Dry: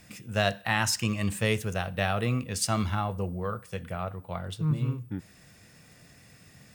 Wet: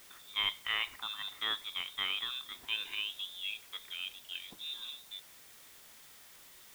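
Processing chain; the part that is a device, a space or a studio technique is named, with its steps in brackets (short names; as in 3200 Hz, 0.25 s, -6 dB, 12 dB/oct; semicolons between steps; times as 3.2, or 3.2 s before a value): scrambled radio voice (BPF 300–2600 Hz; inverted band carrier 3800 Hz; white noise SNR 16 dB); gain -5.5 dB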